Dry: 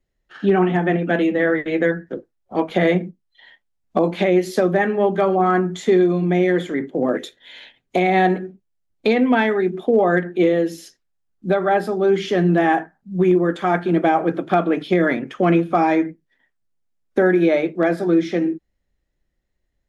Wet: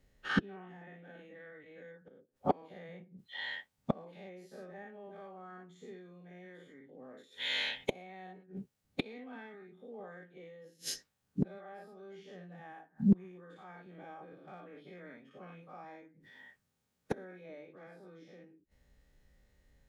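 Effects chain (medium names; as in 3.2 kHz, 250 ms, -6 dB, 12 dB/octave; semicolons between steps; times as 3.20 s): every event in the spectrogram widened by 120 ms; inverted gate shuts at -18 dBFS, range -39 dB; comb of notches 340 Hz; trim +4 dB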